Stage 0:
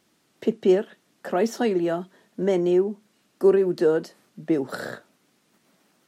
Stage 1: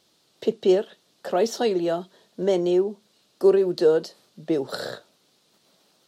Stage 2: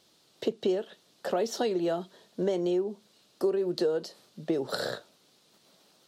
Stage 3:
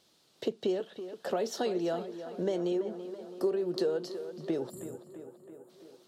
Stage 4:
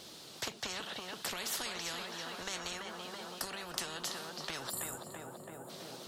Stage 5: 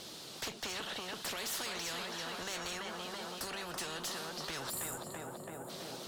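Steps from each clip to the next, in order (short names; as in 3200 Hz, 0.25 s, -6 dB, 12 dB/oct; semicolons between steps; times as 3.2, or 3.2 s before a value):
graphic EQ 250/500/2000/4000 Hz -6/+4/-6/+10 dB
compressor 5:1, threshold -25 dBFS, peak gain reduction 12 dB
spectral delete 4.7–5.69, 370–6800 Hz; tape echo 0.331 s, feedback 71%, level -10 dB, low-pass 3100 Hz; gain -3 dB
spectral compressor 10:1; gain +3 dB
tube stage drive 38 dB, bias 0.3; gain +4 dB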